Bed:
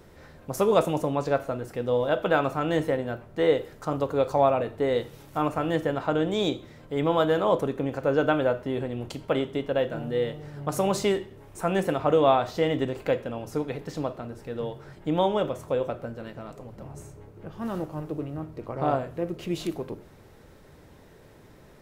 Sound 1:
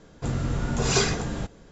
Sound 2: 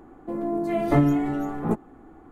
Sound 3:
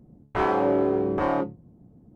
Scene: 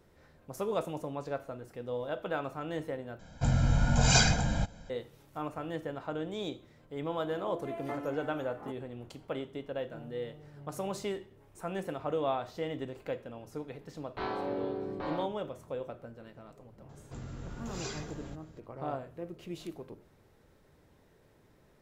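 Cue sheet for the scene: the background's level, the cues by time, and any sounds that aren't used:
bed −11.5 dB
0:03.19: overwrite with 1 −3 dB + comb filter 1.3 ms, depth 87%
0:06.97: mix in 2 −13 dB + high-pass filter 460 Hz
0:13.82: mix in 3 −13 dB + low-pass with resonance 4,200 Hz, resonance Q 6.5
0:16.89: mix in 1 −7 dB + downward compressor 1.5 to 1, threshold −48 dBFS

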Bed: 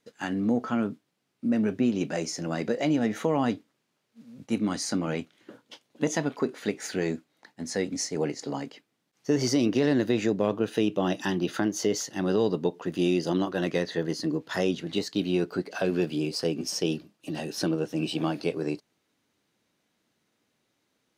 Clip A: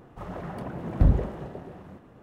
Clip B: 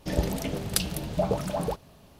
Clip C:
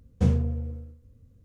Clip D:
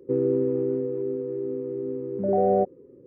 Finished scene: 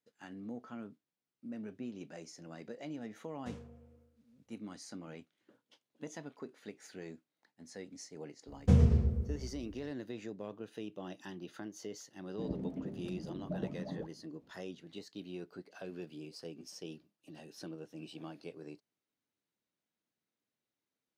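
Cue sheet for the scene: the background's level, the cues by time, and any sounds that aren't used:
bed −18.5 dB
0:03.25: mix in C −12.5 dB + high-pass filter 670 Hz 6 dB per octave
0:08.47: mix in C −2.5 dB + delay with pitch and tempo change per echo 84 ms, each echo −2 semitones, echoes 2, each echo −6 dB
0:12.32: mix in B −5 dB + resonant band-pass 240 Hz, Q 1.9
not used: A, D

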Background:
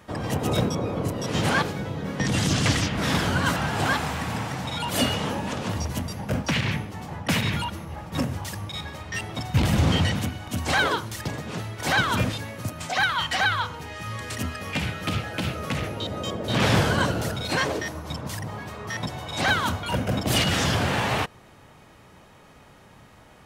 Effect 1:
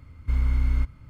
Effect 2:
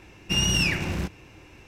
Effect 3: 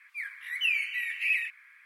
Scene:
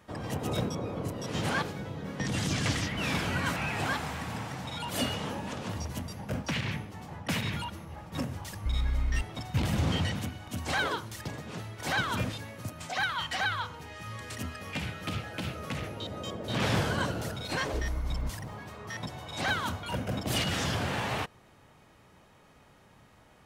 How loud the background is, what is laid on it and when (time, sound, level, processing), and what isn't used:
background −7.5 dB
0:02.36: mix in 3 −12.5 dB + envelope flattener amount 50%
0:08.37: mix in 1 −6.5 dB
0:17.45: mix in 1 −11 dB + converter with a step at zero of −38.5 dBFS
not used: 2

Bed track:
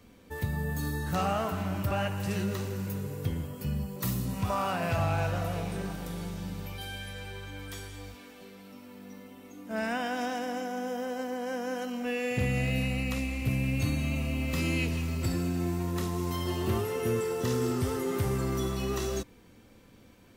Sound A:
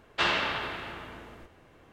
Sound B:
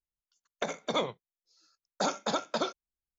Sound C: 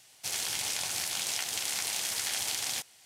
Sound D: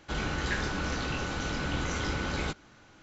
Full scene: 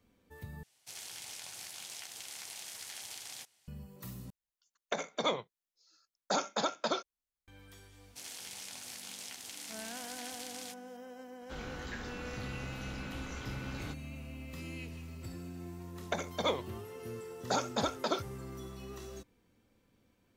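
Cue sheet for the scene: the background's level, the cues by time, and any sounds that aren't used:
bed track −14.5 dB
0:00.63: overwrite with C −13 dB + high-pass filter 60 Hz
0:04.30: overwrite with B −1 dB + low-shelf EQ 390 Hz −4 dB
0:07.92: mix in C −13 dB
0:11.41: mix in D −12 dB
0:15.50: mix in B −2.5 dB + phase shifter 1.3 Hz, delay 3.6 ms, feedback 27%
not used: A

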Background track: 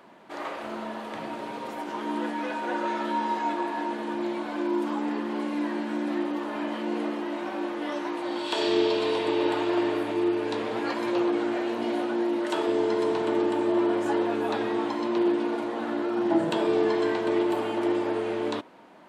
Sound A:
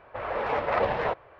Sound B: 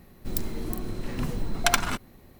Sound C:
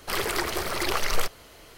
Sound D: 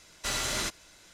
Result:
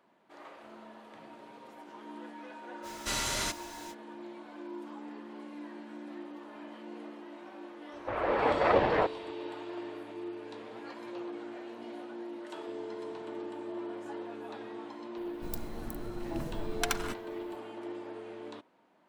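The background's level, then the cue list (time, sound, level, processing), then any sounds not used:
background track −15.5 dB
0:02.82: mix in D −2.5 dB, fades 0.05 s + converter with a step at zero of −44.5 dBFS
0:07.93: mix in A −1 dB + parametric band 300 Hz +9 dB
0:15.17: mix in B −9.5 dB
not used: C

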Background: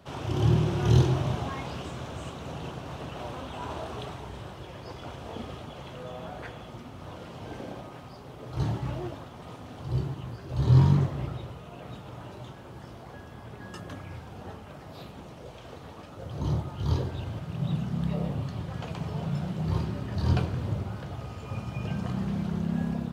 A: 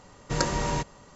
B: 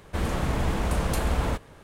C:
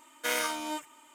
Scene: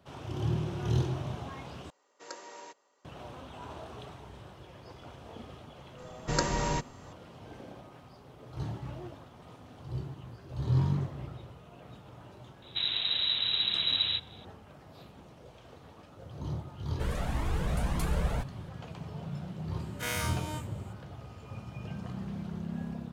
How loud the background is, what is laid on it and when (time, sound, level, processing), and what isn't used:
background −8 dB
0:01.90: overwrite with A −17 dB + high-pass filter 340 Hz 24 dB per octave
0:05.98: mix in A −2.5 dB
0:12.62: mix in B −6 dB + voice inversion scrambler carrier 3,900 Hz
0:16.86: mix in B −3 dB + flanger whose copies keep moving one way rising 1.8 Hz
0:19.79: mix in C −7.5 dB + every bin's largest magnitude spread in time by 60 ms

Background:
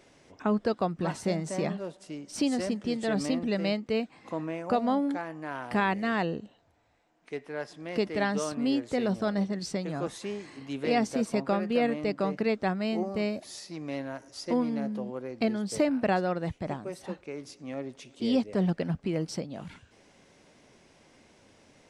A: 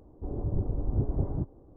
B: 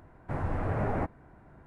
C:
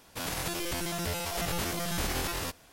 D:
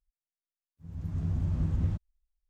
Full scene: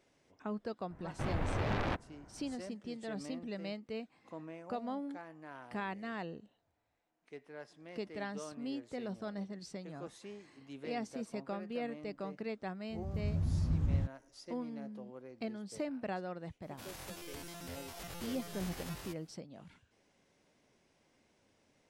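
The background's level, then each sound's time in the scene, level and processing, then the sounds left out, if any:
background −13 dB
0:00.90: mix in B −3 dB + phase distortion by the signal itself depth 0.84 ms
0:12.10: mix in D −3 dB
0:16.62: mix in C −14.5 dB
not used: A

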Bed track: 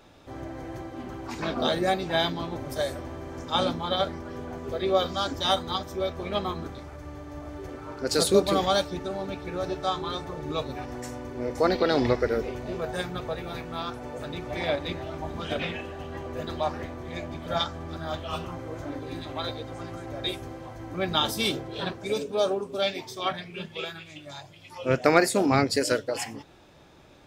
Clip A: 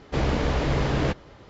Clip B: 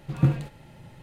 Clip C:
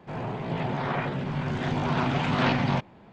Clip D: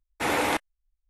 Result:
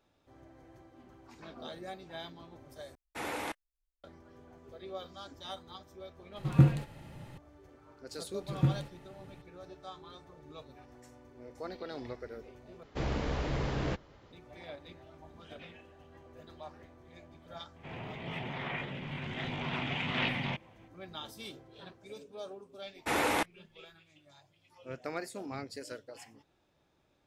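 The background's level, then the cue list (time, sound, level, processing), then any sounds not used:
bed track −19 dB
0:02.95: overwrite with D −12.5 dB
0:06.36: mix in B −1 dB
0:08.40: mix in B −7 dB
0:12.83: overwrite with A −9.5 dB
0:17.76: mix in C −11.5 dB + flat-topped bell 2,600 Hz +10.5 dB 1.1 octaves
0:22.86: mix in D −4.5 dB

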